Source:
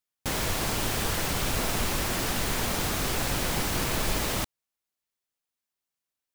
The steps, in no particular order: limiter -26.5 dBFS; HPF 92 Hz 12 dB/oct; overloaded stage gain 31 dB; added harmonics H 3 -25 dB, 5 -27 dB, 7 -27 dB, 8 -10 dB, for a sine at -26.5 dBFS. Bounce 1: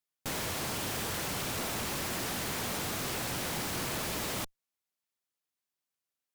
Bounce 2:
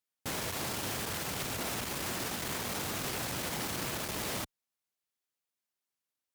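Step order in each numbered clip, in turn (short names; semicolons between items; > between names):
HPF > added harmonics > limiter > overloaded stage; added harmonics > HPF > limiter > overloaded stage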